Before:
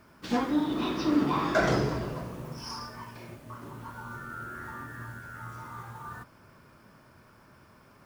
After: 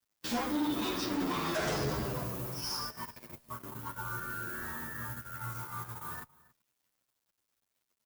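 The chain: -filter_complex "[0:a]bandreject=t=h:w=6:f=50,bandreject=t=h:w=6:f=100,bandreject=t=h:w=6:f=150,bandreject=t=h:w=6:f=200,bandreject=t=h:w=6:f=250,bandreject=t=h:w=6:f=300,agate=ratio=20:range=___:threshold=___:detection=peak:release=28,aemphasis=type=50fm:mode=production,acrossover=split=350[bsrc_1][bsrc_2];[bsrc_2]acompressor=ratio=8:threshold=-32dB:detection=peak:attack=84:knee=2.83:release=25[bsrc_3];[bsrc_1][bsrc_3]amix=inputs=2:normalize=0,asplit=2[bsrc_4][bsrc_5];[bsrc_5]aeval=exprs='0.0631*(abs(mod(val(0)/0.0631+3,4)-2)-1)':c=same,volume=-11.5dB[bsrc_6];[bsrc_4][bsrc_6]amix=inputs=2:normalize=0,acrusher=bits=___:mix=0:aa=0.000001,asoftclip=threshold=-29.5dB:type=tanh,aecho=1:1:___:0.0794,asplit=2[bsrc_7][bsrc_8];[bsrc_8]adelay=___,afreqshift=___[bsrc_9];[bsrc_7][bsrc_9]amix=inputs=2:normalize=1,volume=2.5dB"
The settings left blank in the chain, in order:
-23dB, -47dB, 10, 279, 9.1, -0.65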